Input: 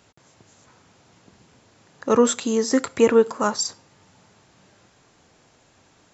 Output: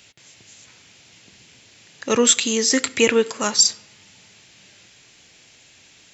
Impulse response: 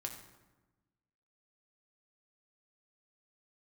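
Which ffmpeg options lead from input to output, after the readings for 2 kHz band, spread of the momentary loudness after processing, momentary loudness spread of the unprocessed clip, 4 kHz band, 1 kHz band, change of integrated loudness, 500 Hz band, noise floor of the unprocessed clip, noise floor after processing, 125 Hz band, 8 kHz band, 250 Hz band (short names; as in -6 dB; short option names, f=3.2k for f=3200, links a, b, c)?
+7.5 dB, 5 LU, 10 LU, +11.5 dB, -3.0 dB, +3.0 dB, -2.0 dB, -59 dBFS, -52 dBFS, -1.0 dB, n/a, -1.5 dB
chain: -filter_complex "[0:a]highshelf=f=1.7k:t=q:w=1.5:g=12.5,asplit=2[a][b];[1:a]atrim=start_sample=2205,lowpass=3.3k[c];[b][c]afir=irnorm=-1:irlink=0,volume=-11.5dB[d];[a][d]amix=inputs=2:normalize=0,volume=-2.5dB"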